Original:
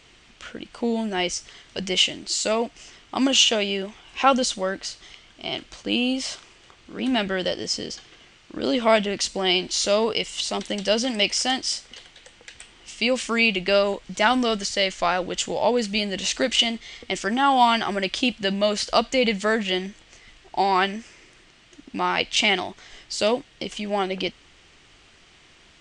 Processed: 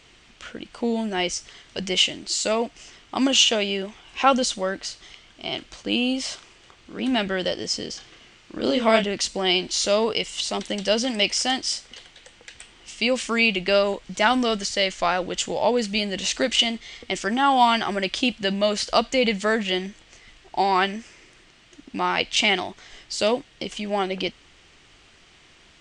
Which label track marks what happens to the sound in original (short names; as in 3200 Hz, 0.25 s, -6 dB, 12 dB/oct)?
7.920000	9.040000	doubler 31 ms -6 dB